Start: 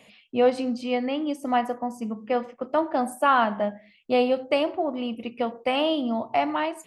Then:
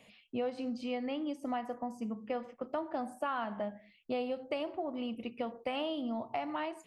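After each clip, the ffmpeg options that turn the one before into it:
-filter_complex "[0:a]acrossover=split=6200[s0][s1];[s1]acompressor=threshold=0.00178:ratio=4:attack=1:release=60[s2];[s0][s2]amix=inputs=2:normalize=0,lowshelf=f=92:g=7.5,acompressor=threshold=0.0501:ratio=4,volume=0.447"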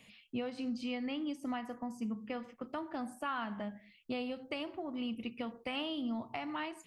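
-af "equalizer=f=610:t=o:w=1.4:g=-10,volume=1.33"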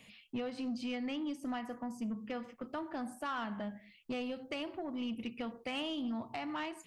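-af "asoftclip=type=tanh:threshold=0.0237,volume=1.19"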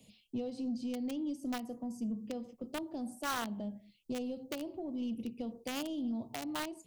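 -filter_complex "[0:a]acrossover=split=110|720|3500[s0][s1][s2][s3];[s2]acrusher=bits=5:mix=0:aa=0.000001[s4];[s3]alimiter=level_in=13.3:limit=0.0631:level=0:latency=1:release=427,volume=0.075[s5];[s0][s1][s4][s5]amix=inputs=4:normalize=0,volume=1.19"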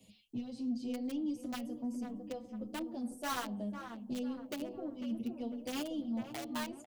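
-filter_complex "[0:a]asplit=2[s0][s1];[s1]adelay=499,lowpass=f=1400:p=1,volume=0.422,asplit=2[s2][s3];[s3]adelay=499,lowpass=f=1400:p=1,volume=0.48,asplit=2[s4][s5];[s5]adelay=499,lowpass=f=1400:p=1,volume=0.48,asplit=2[s6][s7];[s7]adelay=499,lowpass=f=1400:p=1,volume=0.48,asplit=2[s8][s9];[s9]adelay=499,lowpass=f=1400:p=1,volume=0.48,asplit=2[s10][s11];[s11]adelay=499,lowpass=f=1400:p=1,volume=0.48[s12];[s0][s2][s4][s6][s8][s10][s12]amix=inputs=7:normalize=0,asplit=2[s13][s14];[s14]adelay=7.6,afreqshift=0.85[s15];[s13][s15]amix=inputs=2:normalize=1,volume=1.19"

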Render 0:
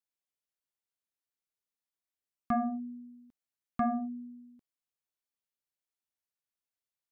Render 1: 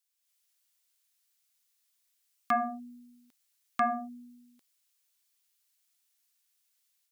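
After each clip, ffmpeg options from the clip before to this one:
-af "highpass=f=1200:p=1,highshelf=f=2100:g=11.5,dynaudnorm=f=160:g=3:m=2.37"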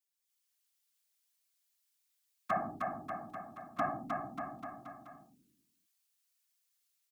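-af "afftfilt=real='hypot(re,im)*cos(2*PI*random(0))':imag='hypot(re,im)*sin(2*PI*random(1))':win_size=512:overlap=0.75,aecho=1:1:310|589|840.1|1066|1269:0.631|0.398|0.251|0.158|0.1"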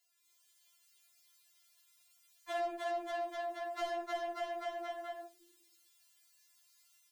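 -filter_complex "[0:a]asoftclip=type=tanh:threshold=0.015,asplit=2[s0][s1];[s1]highpass=f=720:p=1,volume=7.94,asoftclip=type=tanh:threshold=0.015[s2];[s0][s2]amix=inputs=2:normalize=0,lowpass=f=7000:p=1,volume=0.501,afftfilt=real='re*4*eq(mod(b,16),0)':imag='im*4*eq(mod(b,16),0)':win_size=2048:overlap=0.75,volume=1.58"

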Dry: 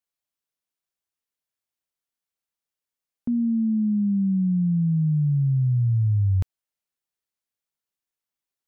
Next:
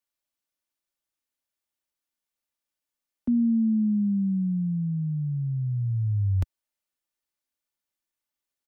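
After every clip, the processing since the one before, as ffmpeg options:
-filter_complex "[0:a]aecho=1:1:3.4:0.4,acrossover=split=110|170[s0][s1][s2];[s1]alimiter=level_in=3.55:limit=0.0631:level=0:latency=1,volume=0.282[s3];[s0][s3][s2]amix=inputs=3:normalize=0"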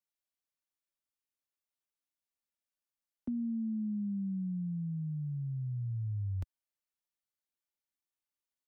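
-af "acompressor=threshold=0.0562:ratio=6,volume=0.398"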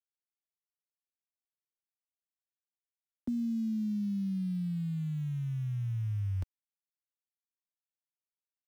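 -af "aeval=exprs='val(0)*gte(abs(val(0)),0.00282)':c=same,volume=1.33"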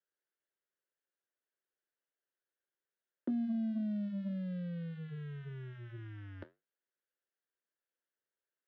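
-af "flanger=delay=8.9:depth=4.2:regen=-72:speed=1.8:shape=sinusoidal,aeval=exprs='0.0376*(cos(1*acos(clip(val(0)/0.0376,-1,1)))-cos(1*PI/2))+0.00119*(cos(5*acos(clip(val(0)/0.0376,-1,1)))-cos(5*PI/2))':c=same,highpass=350,equalizer=f=370:t=q:w=4:g=6,equalizer=f=530:t=q:w=4:g=5,equalizer=f=780:t=q:w=4:g=-7,equalizer=f=1100:t=q:w=4:g=-7,equalizer=f=1600:t=q:w=4:g=6,equalizer=f=2400:t=q:w=4:g=-10,lowpass=f=2800:w=0.5412,lowpass=f=2800:w=1.3066,volume=2.99"

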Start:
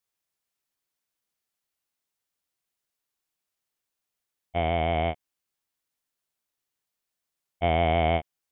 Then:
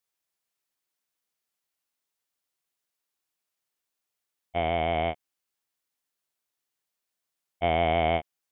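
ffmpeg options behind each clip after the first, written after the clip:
-af "lowshelf=f=160:g=-7"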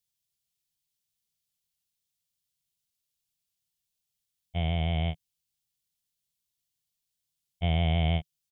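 -af "firequalizer=gain_entry='entry(160,0);entry(260,-17);entry(1200,-23);entry(3200,-7)':delay=0.05:min_phase=1,volume=2.66"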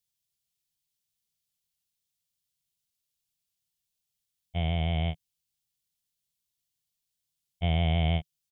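-af anull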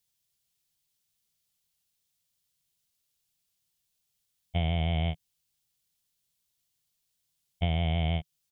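-af "acompressor=threshold=0.0355:ratio=10,volume=1.78"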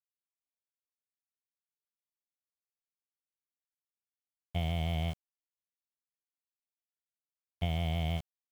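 -af "aeval=exprs='val(0)*gte(abs(val(0)),0.0119)':c=same,volume=0.596"

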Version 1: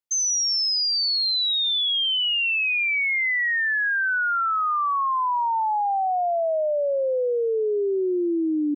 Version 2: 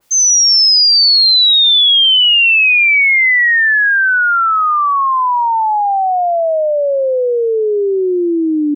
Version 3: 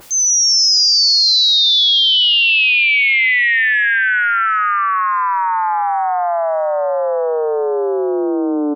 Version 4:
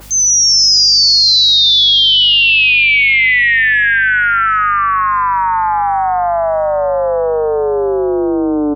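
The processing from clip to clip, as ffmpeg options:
-af "acompressor=mode=upward:threshold=0.00631:ratio=2.5,adynamicequalizer=threshold=0.0178:dfrequency=1600:dqfactor=0.7:tfrequency=1600:tqfactor=0.7:attack=5:release=100:ratio=0.375:range=2.5:mode=boostabove:tftype=highshelf,volume=2.82"
-filter_complex "[0:a]acompressor=mode=upward:threshold=0.0891:ratio=2.5,asplit=2[s0][s1];[s1]asplit=8[s2][s3][s4][s5][s6][s7][s8][s9];[s2]adelay=152,afreqshift=130,volume=0.355[s10];[s3]adelay=304,afreqshift=260,volume=0.219[s11];[s4]adelay=456,afreqshift=390,volume=0.136[s12];[s5]adelay=608,afreqshift=520,volume=0.0841[s13];[s6]adelay=760,afreqshift=650,volume=0.0525[s14];[s7]adelay=912,afreqshift=780,volume=0.0324[s15];[s8]adelay=1064,afreqshift=910,volume=0.0202[s16];[s9]adelay=1216,afreqshift=1040,volume=0.0124[s17];[s10][s11][s12][s13][s14][s15][s16][s17]amix=inputs=8:normalize=0[s18];[s0][s18]amix=inputs=2:normalize=0,volume=0.631"
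-af "aeval=exprs='val(0)+0.0112*(sin(2*PI*50*n/s)+sin(2*PI*2*50*n/s)/2+sin(2*PI*3*50*n/s)/3+sin(2*PI*4*50*n/s)/4+sin(2*PI*5*50*n/s)/5)':c=same,volume=1.41"

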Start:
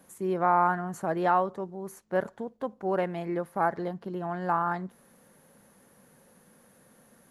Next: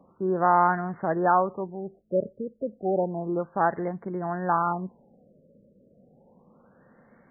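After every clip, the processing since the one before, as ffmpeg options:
-af "afftfilt=real='re*lt(b*sr/1024,620*pow(2300/620,0.5+0.5*sin(2*PI*0.31*pts/sr)))':imag='im*lt(b*sr/1024,620*pow(2300/620,0.5+0.5*sin(2*PI*0.31*pts/sr)))':win_size=1024:overlap=0.75,volume=1.41"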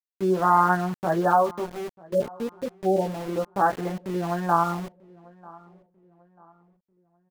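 -filter_complex "[0:a]flanger=delay=15.5:depth=2.6:speed=0.3,aeval=exprs='val(0)*gte(abs(val(0)),0.0106)':c=same,asplit=2[s0][s1];[s1]adelay=942,lowpass=f=1600:p=1,volume=0.0708,asplit=2[s2][s3];[s3]adelay=942,lowpass=f=1600:p=1,volume=0.42,asplit=2[s4][s5];[s5]adelay=942,lowpass=f=1600:p=1,volume=0.42[s6];[s0][s2][s4][s6]amix=inputs=4:normalize=0,volume=1.68"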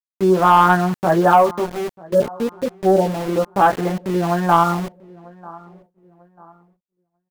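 -af "agate=range=0.0224:threshold=0.00178:ratio=3:detection=peak,asoftclip=type=tanh:threshold=0.282,volume=2.66"

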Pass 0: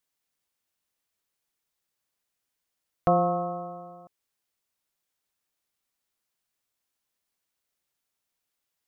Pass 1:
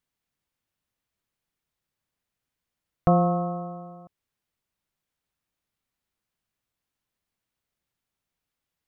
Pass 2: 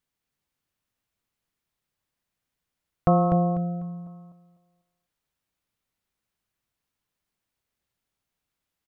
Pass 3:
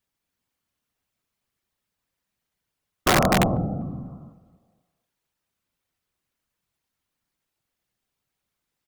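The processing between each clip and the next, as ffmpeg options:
-af "bass=f=250:g=9,treble=f=4000:g=-6"
-af "aecho=1:1:248|496|744|992:0.501|0.14|0.0393|0.011"
-af "afftfilt=real='hypot(re,im)*cos(2*PI*random(0))':imag='hypot(re,im)*sin(2*PI*random(1))':win_size=512:overlap=0.75,aeval=exprs='(mod(8.91*val(0)+1,2)-1)/8.91':c=same,volume=2.51"

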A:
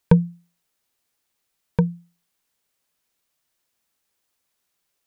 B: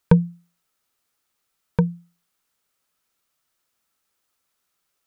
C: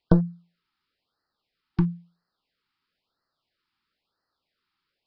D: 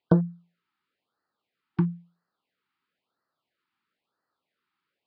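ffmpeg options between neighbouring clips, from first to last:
-af "equalizer=f=1300:w=5.7:g=8"
-af "aresample=11025,aeval=exprs='clip(val(0),-1,0.0891)':c=same,aresample=44100,afftfilt=real='re*(1-between(b*sr/1024,530*pow(2900/530,0.5+0.5*sin(2*PI*1*pts/sr))/1.41,530*pow(2900/530,0.5+0.5*sin(2*PI*1*pts/sr))*1.41))':imag='im*(1-between(b*sr/1024,530*pow(2900/530,0.5+0.5*sin(2*PI*1*pts/sr))/1.41,530*pow(2900/530,0.5+0.5*sin(2*PI*1*pts/sr))*1.41))':win_size=1024:overlap=0.75"
-af "highpass=140,lowpass=2800"

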